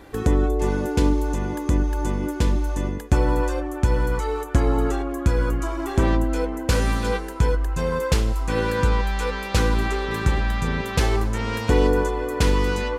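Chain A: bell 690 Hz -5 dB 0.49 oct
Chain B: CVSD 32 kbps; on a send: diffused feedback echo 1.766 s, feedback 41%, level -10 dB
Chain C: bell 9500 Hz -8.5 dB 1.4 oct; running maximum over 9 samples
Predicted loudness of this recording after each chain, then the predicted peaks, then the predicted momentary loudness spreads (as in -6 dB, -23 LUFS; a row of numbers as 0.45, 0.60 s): -23.5, -23.5, -23.5 LUFS; -5.5, -5.5, -6.0 dBFS; 5, 4, 5 LU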